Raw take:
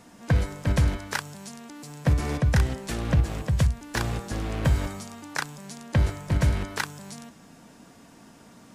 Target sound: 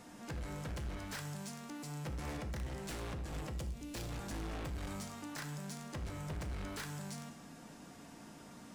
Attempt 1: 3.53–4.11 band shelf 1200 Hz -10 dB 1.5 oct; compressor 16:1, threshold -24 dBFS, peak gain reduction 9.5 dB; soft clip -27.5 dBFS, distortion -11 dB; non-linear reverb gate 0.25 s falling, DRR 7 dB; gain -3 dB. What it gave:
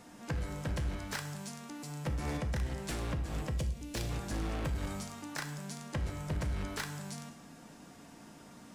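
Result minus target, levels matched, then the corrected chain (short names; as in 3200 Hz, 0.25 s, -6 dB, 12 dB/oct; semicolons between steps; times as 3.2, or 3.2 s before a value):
soft clip: distortion -7 dB
3.53–4.11 band shelf 1200 Hz -10 dB 1.5 oct; compressor 16:1, threshold -24 dBFS, peak gain reduction 9.5 dB; soft clip -37 dBFS, distortion -4 dB; non-linear reverb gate 0.25 s falling, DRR 7 dB; gain -3 dB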